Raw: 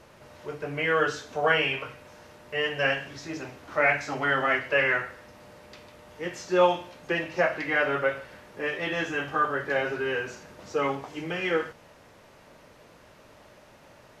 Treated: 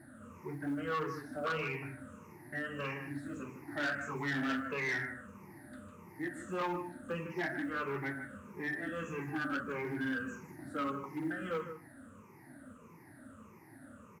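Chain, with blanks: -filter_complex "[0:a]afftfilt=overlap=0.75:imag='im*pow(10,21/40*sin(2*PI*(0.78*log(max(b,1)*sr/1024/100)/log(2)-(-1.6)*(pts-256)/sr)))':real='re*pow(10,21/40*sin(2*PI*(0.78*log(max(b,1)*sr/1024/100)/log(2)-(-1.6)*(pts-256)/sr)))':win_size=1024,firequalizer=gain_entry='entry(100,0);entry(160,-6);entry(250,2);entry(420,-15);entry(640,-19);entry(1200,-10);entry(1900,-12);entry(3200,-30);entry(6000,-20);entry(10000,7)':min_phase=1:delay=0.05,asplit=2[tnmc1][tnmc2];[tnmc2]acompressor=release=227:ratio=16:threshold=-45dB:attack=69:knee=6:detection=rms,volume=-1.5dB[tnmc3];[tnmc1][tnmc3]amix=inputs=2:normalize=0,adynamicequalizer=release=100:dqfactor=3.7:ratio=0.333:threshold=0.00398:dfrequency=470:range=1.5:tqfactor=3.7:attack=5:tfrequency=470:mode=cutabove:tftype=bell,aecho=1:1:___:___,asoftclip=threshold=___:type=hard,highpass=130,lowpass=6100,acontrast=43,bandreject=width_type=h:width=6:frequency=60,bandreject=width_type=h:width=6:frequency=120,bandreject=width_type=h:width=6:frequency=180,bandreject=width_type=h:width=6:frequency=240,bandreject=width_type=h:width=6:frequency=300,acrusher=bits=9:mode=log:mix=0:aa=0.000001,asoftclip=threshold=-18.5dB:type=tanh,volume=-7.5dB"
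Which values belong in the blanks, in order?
155, 0.237, -27.5dB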